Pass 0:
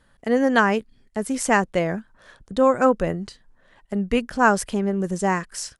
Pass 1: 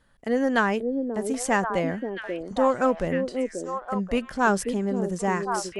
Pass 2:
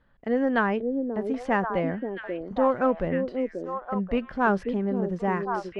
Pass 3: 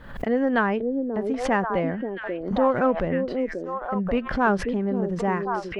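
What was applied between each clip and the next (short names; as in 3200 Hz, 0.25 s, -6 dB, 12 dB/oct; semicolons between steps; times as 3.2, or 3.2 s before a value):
in parallel at -10.5 dB: hard clip -16 dBFS, distortion -10 dB; on the sum: delay with a stepping band-pass 0.536 s, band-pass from 350 Hz, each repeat 1.4 oct, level -1 dB; gain -6 dB
air absorption 330 m
backwards sustainer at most 81 dB/s; gain +1.5 dB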